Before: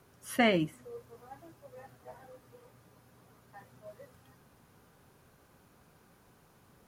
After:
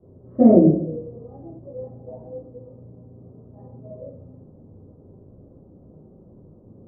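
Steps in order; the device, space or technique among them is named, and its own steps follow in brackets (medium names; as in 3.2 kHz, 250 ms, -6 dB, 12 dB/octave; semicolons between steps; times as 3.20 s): next room (low-pass 550 Hz 24 dB/octave; reverberation RT60 0.65 s, pre-delay 6 ms, DRR -9.5 dB); trim +5.5 dB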